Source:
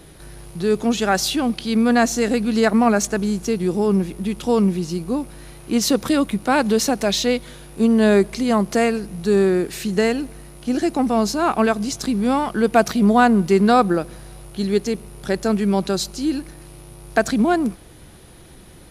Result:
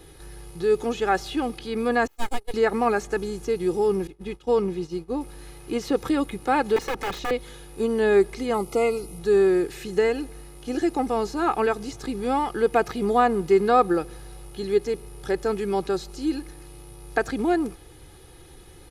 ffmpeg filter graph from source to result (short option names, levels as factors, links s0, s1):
-filter_complex "[0:a]asettb=1/sr,asplit=3[s0][s1][s2];[s0]atrim=end=2.074[s3];[s1]atrim=start=2.07:end=2.54,asetpts=PTS-STARTPTS,afade=t=in:d=0.004:c=qsin,afade=t=out:st=0.466:d=0.004:c=qsin,agate=range=0.00794:threshold=0.112:ratio=16:release=100:detection=peak,aemphasis=mode=production:type=75kf,aeval=exprs='abs(val(0))':c=same[s4];[s2]atrim=start=2.536[s5];[s3][s4]acrossfade=d=0.004:c1=hsin:c2=qsin[s6];[s6][s5]acrossfade=d=0.004:c1=qsin:c2=hsin,asettb=1/sr,asplit=3[s7][s8][s9];[s7]atrim=end=4.074[s10];[s8]atrim=start=4.07:end=5.21,asetpts=PTS-STARTPTS,afade=t=in:d=0.004:c=qsin,afade=t=out:st=1.136:d=0.004:c=qsin,agate=range=0.0224:threshold=0.0631:ratio=3:release=100:detection=peak,highshelf=f=6700:g=-12[s11];[s9]atrim=start=5.206[s12];[s10][s11]acrossfade=d=0.004:c1=hsin:c2=qsin[s13];[s13][s12]acrossfade=d=0.004:c1=qsin:c2=hsin,asettb=1/sr,asplit=3[s14][s15][s16];[s14]atrim=end=6.764[s17];[s15]atrim=start=6.76:end=7.31,asetpts=PTS-STARTPTS,afade=t=in:d=0.004:c=qsin,afade=t=out:st=0.546:d=0.004:c=qsin,highshelf=f=2500:g=-4.5,aeval=exprs='(mod(6.31*val(0)+1,2)-1)/6.31':c=same[s18];[s16]atrim=start=7.306[s19];[s17][s18]acrossfade=d=0.004:c1=hsin:c2=qsin[s20];[s20][s19]acrossfade=d=0.004:c1=qsin:c2=hsin,asettb=1/sr,asplit=3[s21][s22][s23];[s21]atrim=end=8.544[s24];[s22]atrim=start=8.54:end=9.19,asetpts=PTS-STARTPTS,afade=t=in:d=0.004:c=qsin,afade=t=out:st=0.646:d=0.004:c=qsin,asuperstop=centerf=1700:order=12:qfactor=4,highshelf=f=8100:g=11.5[s25];[s23]atrim=start=9.186[s26];[s24][s25]acrossfade=d=0.004:c1=hsin:c2=qsin[s27];[s27][s26]acrossfade=d=0.004:c1=qsin:c2=hsin,aecho=1:1:2.4:0.64,acrossover=split=2600[s28][s29];[s29]acompressor=threshold=0.0158:ratio=4:attack=1:release=60[s30];[s28][s30]amix=inputs=2:normalize=0,volume=0.562"